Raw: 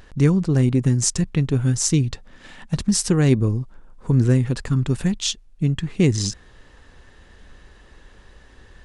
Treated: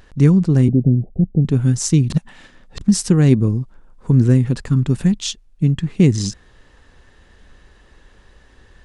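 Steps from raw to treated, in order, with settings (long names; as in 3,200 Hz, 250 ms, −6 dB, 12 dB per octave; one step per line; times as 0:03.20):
0:00.68–0:01.45: Butterworth low-pass 760 Hz 96 dB per octave
dynamic equaliser 190 Hz, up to +7 dB, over −30 dBFS, Q 0.81
0:02.10–0:02.81: reverse
level −1 dB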